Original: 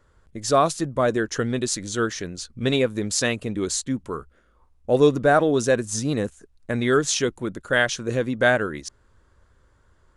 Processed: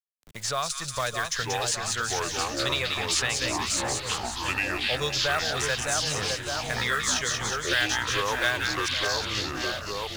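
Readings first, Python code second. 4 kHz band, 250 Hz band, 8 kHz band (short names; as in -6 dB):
+5.5 dB, -12.5 dB, +1.0 dB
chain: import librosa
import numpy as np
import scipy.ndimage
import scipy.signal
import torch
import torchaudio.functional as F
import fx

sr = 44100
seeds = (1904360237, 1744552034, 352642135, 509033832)

p1 = fx.fade_in_head(x, sr, length_s=0.91)
p2 = fx.high_shelf(p1, sr, hz=9100.0, db=-7.5)
p3 = np.sign(p2) * np.maximum(np.abs(p2) - 10.0 ** (-37.0 / 20.0), 0.0)
p4 = p2 + F.gain(torch.from_numpy(p3), -6.0).numpy()
p5 = fx.tone_stack(p4, sr, knobs='10-0-10')
p6 = p5 + fx.echo_split(p5, sr, split_hz=1500.0, low_ms=608, high_ms=182, feedback_pct=52, wet_db=-5, dry=0)
p7 = fx.quant_companded(p6, sr, bits=6)
p8 = fx.echo_pitch(p7, sr, ms=727, semitones=-6, count=2, db_per_echo=-3.0)
y = fx.band_squash(p8, sr, depth_pct=70)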